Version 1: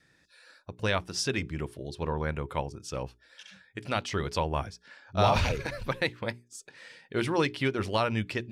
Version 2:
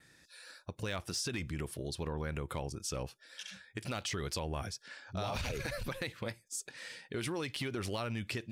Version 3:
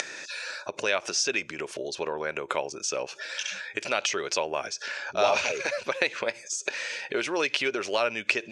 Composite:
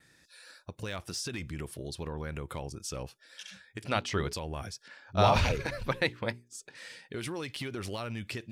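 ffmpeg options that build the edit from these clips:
-filter_complex "[0:a]asplit=2[s0][s1];[1:a]asplit=3[s2][s3][s4];[s2]atrim=end=3.842[s5];[s0]atrim=start=3.838:end=4.332[s6];[s3]atrim=start=4.328:end=4.882[s7];[s1]atrim=start=4.878:end=6.752[s8];[s4]atrim=start=6.748[s9];[s5][s6]acrossfade=d=0.004:c1=hsin:c2=hsin[s10];[s10][s7]acrossfade=d=0.004:c1=hsin:c2=hsin[s11];[s11][s8]acrossfade=d=0.004:c1=hsin:c2=hsin[s12];[s12][s9]acrossfade=d=0.004:c1=hsin:c2=hsin"

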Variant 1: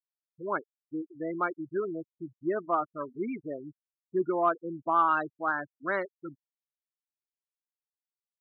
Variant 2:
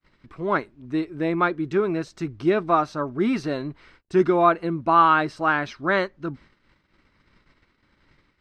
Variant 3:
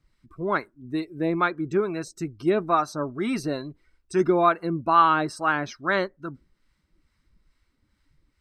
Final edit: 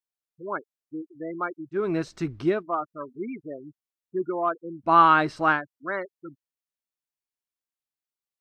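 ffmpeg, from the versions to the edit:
-filter_complex "[1:a]asplit=2[s0][s1];[0:a]asplit=3[s2][s3][s4];[s2]atrim=end=1.95,asetpts=PTS-STARTPTS[s5];[s0]atrim=start=1.71:end=2.64,asetpts=PTS-STARTPTS[s6];[s3]atrim=start=2.4:end=4.93,asetpts=PTS-STARTPTS[s7];[s1]atrim=start=4.83:end=5.62,asetpts=PTS-STARTPTS[s8];[s4]atrim=start=5.52,asetpts=PTS-STARTPTS[s9];[s5][s6]acrossfade=d=0.24:c1=tri:c2=tri[s10];[s10][s7]acrossfade=d=0.24:c1=tri:c2=tri[s11];[s11][s8]acrossfade=d=0.1:c1=tri:c2=tri[s12];[s12][s9]acrossfade=d=0.1:c1=tri:c2=tri"

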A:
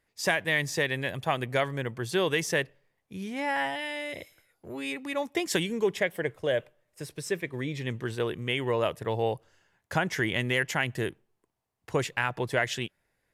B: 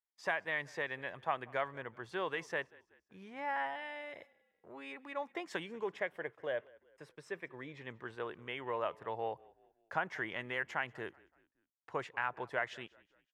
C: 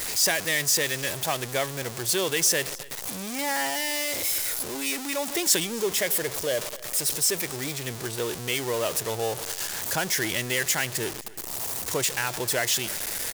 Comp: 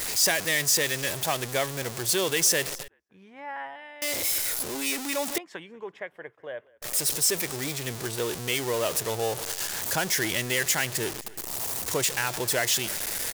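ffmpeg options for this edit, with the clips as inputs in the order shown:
-filter_complex "[1:a]asplit=2[s0][s1];[2:a]asplit=3[s2][s3][s4];[s2]atrim=end=2.882[s5];[s0]atrim=start=2.878:end=4.022[s6];[s3]atrim=start=4.018:end=5.382[s7];[s1]atrim=start=5.378:end=6.822[s8];[s4]atrim=start=6.818[s9];[s5][s6]acrossfade=d=0.004:c1=hsin:c2=hsin[s10];[s10][s7]acrossfade=d=0.004:c1=hsin:c2=hsin[s11];[s11][s8]acrossfade=d=0.004:c1=hsin:c2=hsin[s12];[s12][s9]acrossfade=d=0.004:c1=hsin:c2=hsin"

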